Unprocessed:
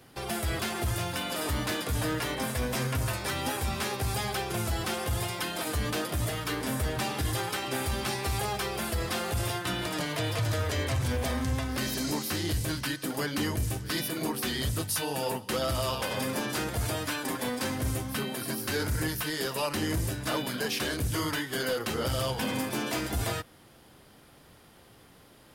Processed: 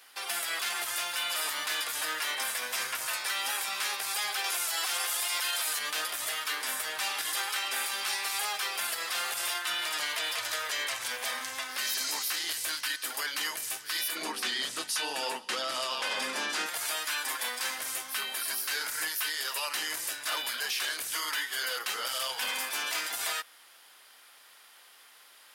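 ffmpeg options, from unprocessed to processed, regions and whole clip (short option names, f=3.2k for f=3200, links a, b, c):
-filter_complex "[0:a]asettb=1/sr,asplit=3[a][b][c];[a]atrim=end=4.444[d];[b]atrim=start=4.44:end=5.79,asetpts=PTS-STARTPTS,afade=t=in:d=0.004:c=qsin,afade=t=out:st=1.346:d=0.004:c=qsin,highpass=110,bass=f=250:g=-12,treble=f=4k:g=4,acontrast=21[e];[c]atrim=start=5.786[f];[d][e]acrossfade=d=0.004:c1=hsin:c2=qsin[g];[g][f]acrossfade=d=0.004:c1=qsin:c2=hsin,asettb=1/sr,asplit=3[h][i][j];[h]atrim=end=14.154[k];[i]atrim=start=14.15:end=16.66,asetpts=PTS-STARTPTS,afade=t=in:d=0.004:c=qsin,afade=t=out:st=2.506:d=0.004:c=qsin,lowpass=7.7k,equalizer=f=250:t=o:w=1.7:g=12[l];[j]atrim=start=16.656[m];[k][l]acrossfade=d=0.004:c1=hsin:c2=qsin[n];[n][m]acrossfade=d=0.004:c1=qsin:c2=hsin,highpass=1.3k,alimiter=level_in=3dB:limit=-24dB:level=0:latency=1:release=12,volume=-3dB,volume=5dB"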